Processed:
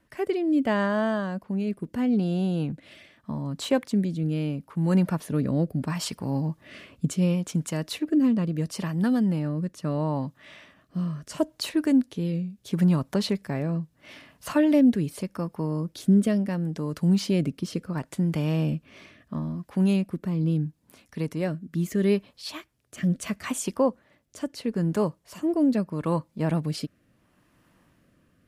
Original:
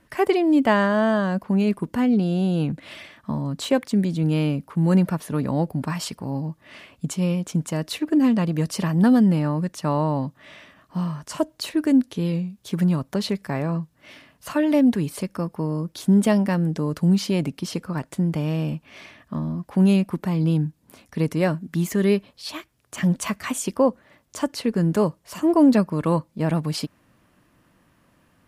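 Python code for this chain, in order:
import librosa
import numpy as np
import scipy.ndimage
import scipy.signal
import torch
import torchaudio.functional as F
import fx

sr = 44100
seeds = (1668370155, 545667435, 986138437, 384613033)

y = fx.rotary(x, sr, hz=0.75)
y = fx.rider(y, sr, range_db=10, speed_s=2.0)
y = F.gain(torch.from_numpy(y), -3.0).numpy()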